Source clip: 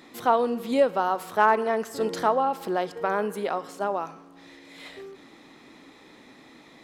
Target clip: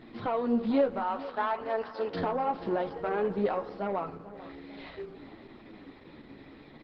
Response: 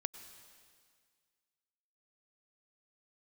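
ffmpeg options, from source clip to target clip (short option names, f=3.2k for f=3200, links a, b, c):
-filter_complex "[0:a]asplit=3[a][b][c];[a]afade=t=out:st=0.99:d=0.02[d];[b]highpass=640,afade=t=in:st=0.99:d=0.02,afade=t=out:st=2.13:d=0.02[e];[c]afade=t=in:st=2.13:d=0.02[f];[d][e][f]amix=inputs=3:normalize=0,aemphasis=mode=reproduction:type=bsi,bandreject=f=1.2k:w=24,asplit=3[g][h][i];[g]afade=t=out:st=3.35:d=0.02[j];[h]adynamicequalizer=threshold=0.00158:dfrequency=3100:dqfactor=3.3:tfrequency=3100:tqfactor=3.3:attack=5:release=100:ratio=0.375:range=2.5:mode=cutabove:tftype=bell,afade=t=in:st=3.35:d=0.02,afade=t=out:st=4.85:d=0.02[k];[i]afade=t=in:st=4.85:d=0.02[l];[j][k][l]amix=inputs=3:normalize=0,alimiter=limit=-16dB:level=0:latency=1:release=344,asoftclip=type=tanh:threshold=-18dB,flanger=delay=8.8:depth=5.8:regen=25:speed=0.54:shape=sinusoidal,asplit=2[m][n];[n]adelay=446,lowpass=f=3.1k:p=1,volume=-15.5dB,asplit=2[o][p];[p]adelay=446,lowpass=f=3.1k:p=1,volume=0.54,asplit=2[q][r];[r]adelay=446,lowpass=f=3.1k:p=1,volume=0.54,asplit=2[s][t];[t]adelay=446,lowpass=f=3.1k:p=1,volume=0.54,asplit=2[u][v];[v]adelay=446,lowpass=f=3.1k:p=1,volume=0.54[w];[m][o][q][s][u][w]amix=inputs=6:normalize=0,aresample=11025,aresample=44100,volume=2.5dB" -ar 48000 -c:a libopus -b:a 12k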